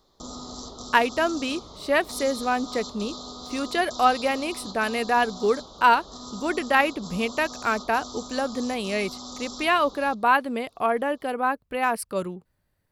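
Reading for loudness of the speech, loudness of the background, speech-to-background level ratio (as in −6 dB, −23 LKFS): −25.0 LKFS, −38.5 LKFS, 13.5 dB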